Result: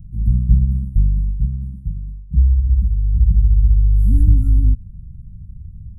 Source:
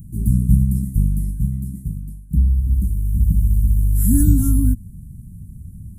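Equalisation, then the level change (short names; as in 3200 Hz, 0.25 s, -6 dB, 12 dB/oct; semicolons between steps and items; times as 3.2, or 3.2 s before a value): RIAA curve playback; fixed phaser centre 1300 Hz, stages 4; -13.0 dB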